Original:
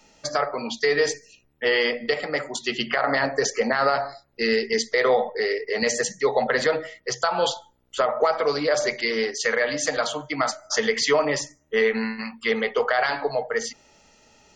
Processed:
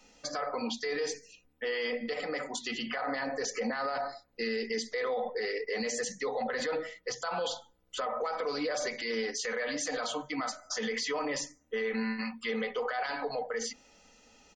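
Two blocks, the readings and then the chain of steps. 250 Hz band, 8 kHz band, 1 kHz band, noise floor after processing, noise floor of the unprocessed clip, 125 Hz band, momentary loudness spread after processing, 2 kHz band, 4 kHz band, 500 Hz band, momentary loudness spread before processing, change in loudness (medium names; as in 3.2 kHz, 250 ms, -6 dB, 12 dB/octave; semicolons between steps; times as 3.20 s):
-6.5 dB, -8.0 dB, -10.0 dB, -65 dBFS, -62 dBFS, -12.0 dB, 4 LU, -11.0 dB, -9.5 dB, -11.0 dB, 7 LU, -10.5 dB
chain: hum notches 50/100/150/200/250 Hz; comb 4 ms, depth 57%; peak limiter -20 dBFS, peak gain reduction 13.5 dB; trim -5 dB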